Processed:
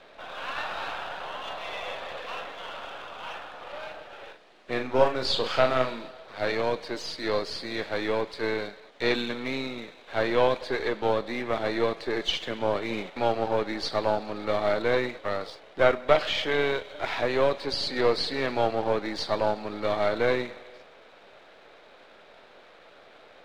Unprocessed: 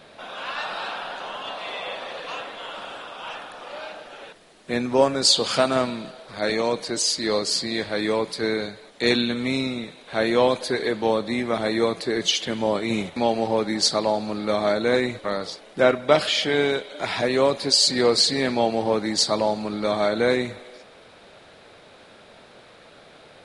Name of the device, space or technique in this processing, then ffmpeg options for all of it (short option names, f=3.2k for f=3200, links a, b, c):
crystal radio: -filter_complex "[0:a]highpass=330,lowpass=3.5k,aeval=exprs='if(lt(val(0),0),0.447*val(0),val(0))':c=same,acrossover=split=5100[a][b];[b]acompressor=threshold=-49dB:ratio=4:attack=1:release=60[c];[a][c]amix=inputs=2:normalize=0,asettb=1/sr,asplit=3[d][e][f];[d]atrim=end=4.234[g];[e]atrim=start=4.23:end=6.08,asetpts=PTS-STARTPTS,afade=t=in:d=0.004:c=qsin,afade=t=out:st=1.846:d=0.004:c=qsin,asplit=2[h][i];[i]adelay=39,volume=-6dB[j];[h][j]amix=inputs=2:normalize=0,atrim=end_sample=81585[k];[f]atrim=start=6.076[l];[g][k]acrossfade=d=0.004:c1=hsin:c2=qsin[m];[m][l]acrossfade=d=0.004:c1=qsin:c2=hsin"